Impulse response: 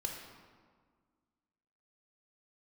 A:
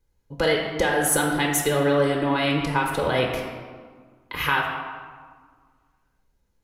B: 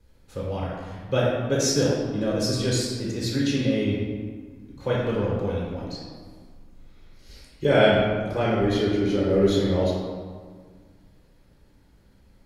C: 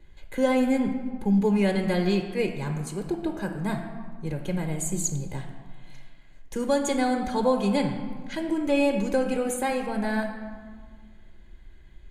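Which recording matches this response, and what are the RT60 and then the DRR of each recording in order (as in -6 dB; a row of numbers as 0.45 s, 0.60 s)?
A; 1.7 s, 1.7 s, 1.7 s; 0.5 dB, -5.5 dB, 5.0 dB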